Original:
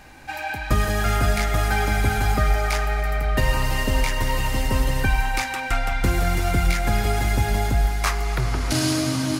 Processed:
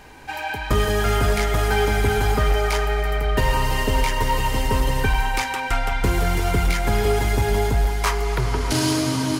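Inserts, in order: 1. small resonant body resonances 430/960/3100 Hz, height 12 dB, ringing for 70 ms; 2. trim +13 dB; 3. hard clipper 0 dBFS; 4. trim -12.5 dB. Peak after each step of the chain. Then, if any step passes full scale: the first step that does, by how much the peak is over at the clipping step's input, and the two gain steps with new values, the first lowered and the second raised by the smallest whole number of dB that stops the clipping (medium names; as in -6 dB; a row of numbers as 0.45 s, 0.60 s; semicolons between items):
-7.0 dBFS, +6.0 dBFS, 0.0 dBFS, -12.5 dBFS; step 2, 6.0 dB; step 2 +7 dB, step 4 -6.5 dB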